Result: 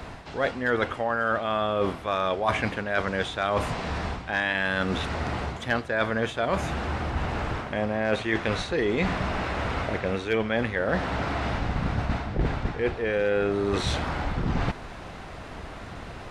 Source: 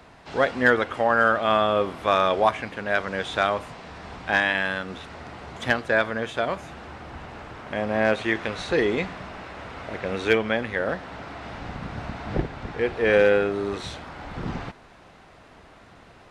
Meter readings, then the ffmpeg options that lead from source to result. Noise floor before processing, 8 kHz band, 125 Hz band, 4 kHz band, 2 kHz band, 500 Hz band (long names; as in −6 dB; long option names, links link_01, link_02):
−50 dBFS, +2.5 dB, +5.5 dB, −1.0 dB, −3.5 dB, −3.0 dB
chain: -af "lowshelf=frequency=110:gain=8.5,areverse,acompressor=threshold=-31dB:ratio=10,areverse,volume=9dB"